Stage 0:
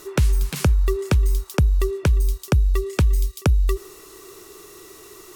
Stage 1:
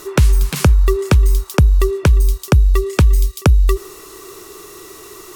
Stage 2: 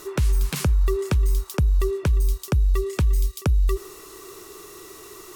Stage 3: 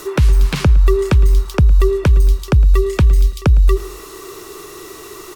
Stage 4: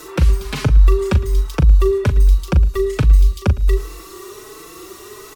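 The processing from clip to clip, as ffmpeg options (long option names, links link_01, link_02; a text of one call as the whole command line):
ffmpeg -i in.wav -af "equalizer=frequency=1100:width_type=o:width=0.54:gain=2.5,volume=6.5dB" out.wav
ffmpeg -i in.wav -af "alimiter=limit=-8.5dB:level=0:latency=1:release=11,volume=-5.5dB" out.wav
ffmpeg -i in.wav -filter_complex "[0:a]acrossover=split=160|5100[link_01][link_02][link_03];[link_03]acompressor=threshold=-48dB:ratio=6[link_04];[link_01][link_02][link_04]amix=inputs=3:normalize=0,aecho=1:1:110|220|330:0.0891|0.0401|0.018,volume=9dB" out.wav
ffmpeg -i in.wav -filter_complex "[0:a]asplit=2[link_01][link_02];[link_02]adelay=39,volume=-9.5dB[link_03];[link_01][link_03]amix=inputs=2:normalize=0,asplit=2[link_04][link_05];[link_05]adelay=4.1,afreqshift=1.3[link_06];[link_04][link_06]amix=inputs=2:normalize=1" out.wav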